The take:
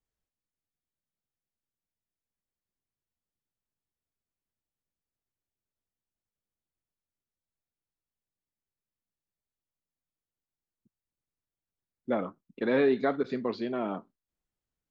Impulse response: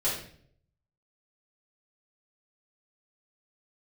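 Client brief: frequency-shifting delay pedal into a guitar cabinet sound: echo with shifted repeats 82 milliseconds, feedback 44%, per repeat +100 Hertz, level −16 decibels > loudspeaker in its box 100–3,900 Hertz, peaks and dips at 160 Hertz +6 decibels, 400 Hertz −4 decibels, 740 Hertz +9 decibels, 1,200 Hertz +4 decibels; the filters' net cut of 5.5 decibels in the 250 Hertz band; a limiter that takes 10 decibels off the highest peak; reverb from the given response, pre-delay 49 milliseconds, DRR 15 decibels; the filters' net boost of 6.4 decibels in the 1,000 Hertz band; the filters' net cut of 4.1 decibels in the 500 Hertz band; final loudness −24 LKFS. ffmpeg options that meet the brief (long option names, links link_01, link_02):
-filter_complex "[0:a]equalizer=frequency=250:width_type=o:gain=-5,equalizer=frequency=500:width_type=o:gain=-5,equalizer=frequency=1000:width_type=o:gain=4,alimiter=level_in=1.5dB:limit=-24dB:level=0:latency=1,volume=-1.5dB,asplit=2[link_01][link_02];[1:a]atrim=start_sample=2205,adelay=49[link_03];[link_02][link_03]afir=irnorm=-1:irlink=0,volume=-23.5dB[link_04];[link_01][link_04]amix=inputs=2:normalize=0,asplit=5[link_05][link_06][link_07][link_08][link_09];[link_06]adelay=82,afreqshift=100,volume=-16dB[link_10];[link_07]adelay=164,afreqshift=200,volume=-23.1dB[link_11];[link_08]adelay=246,afreqshift=300,volume=-30.3dB[link_12];[link_09]adelay=328,afreqshift=400,volume=-37.4dB[link_13];[link_05][link_10][link_11][link_12][link_13]amix=inputs=5:normalize=0,highpass=100,equalizer=frequency=160:width_type=q:width=4:gain=6,equalizer=frequency=400:width_type=q:width=4:gain=-4,equalizer=frequency=740:width_type=q:width=4:gain=9,equalizer=frequency=1200:width_type=q:width=4:gain=4,lowpass=frequency=3900:width=0.5412,lowpass=frequency=3900:width=1.3066,volume=12dB"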